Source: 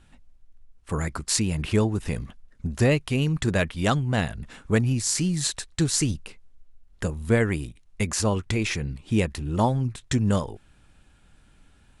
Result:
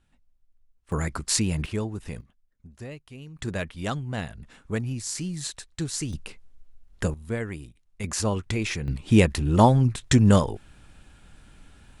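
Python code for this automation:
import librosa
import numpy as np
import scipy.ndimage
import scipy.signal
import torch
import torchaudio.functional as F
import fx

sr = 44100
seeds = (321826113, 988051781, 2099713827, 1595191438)

y = fx.gain(x, sr, db=fx.steps((0.0, -12.0), (0.92, 0.0), (1.66, -7.5), (2.21, -19.0), (3.39, -7.0), (6.13, 1.5), (7.14, -9.0), (8.04, -2.0), (8.88, 5.5)))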